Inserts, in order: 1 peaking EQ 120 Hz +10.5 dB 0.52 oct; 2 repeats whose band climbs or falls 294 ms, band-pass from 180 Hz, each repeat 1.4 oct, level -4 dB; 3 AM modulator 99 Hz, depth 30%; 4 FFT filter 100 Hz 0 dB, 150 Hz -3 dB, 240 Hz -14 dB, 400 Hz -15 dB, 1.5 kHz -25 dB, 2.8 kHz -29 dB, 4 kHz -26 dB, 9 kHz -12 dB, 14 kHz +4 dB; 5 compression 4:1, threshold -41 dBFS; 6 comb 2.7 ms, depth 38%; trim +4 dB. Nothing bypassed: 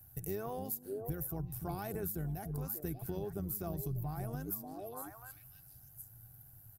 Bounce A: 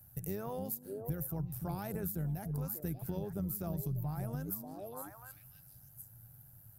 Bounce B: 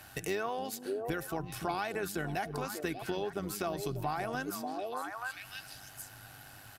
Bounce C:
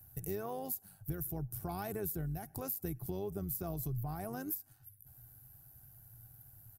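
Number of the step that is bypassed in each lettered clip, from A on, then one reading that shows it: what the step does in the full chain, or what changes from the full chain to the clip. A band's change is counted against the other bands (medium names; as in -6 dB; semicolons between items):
6, momentary loudness spread change +2 LU; 4, crest factor change +2.0 dB; 2, momentary loudness spread change +3 LU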